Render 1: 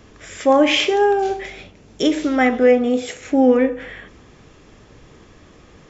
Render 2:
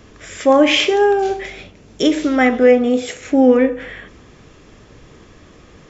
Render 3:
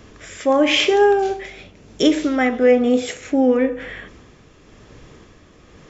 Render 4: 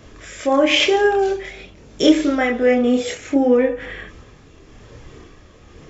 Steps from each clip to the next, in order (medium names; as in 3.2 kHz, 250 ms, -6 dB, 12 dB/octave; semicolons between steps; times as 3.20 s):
peaking EQ 830 Hz -2.5 dB 0.28 oct; trim +2.5 dB
tremolo 1 Hz, depth 42%
chorus voices 6, 0.4 Hz, delay 27 ms, depth 1.9 ms; trim +4 dB